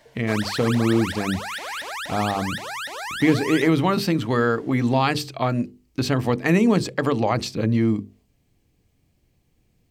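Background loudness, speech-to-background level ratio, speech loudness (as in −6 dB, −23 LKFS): −30.5 LKFS, 8.0 dB, −22.5 LKFS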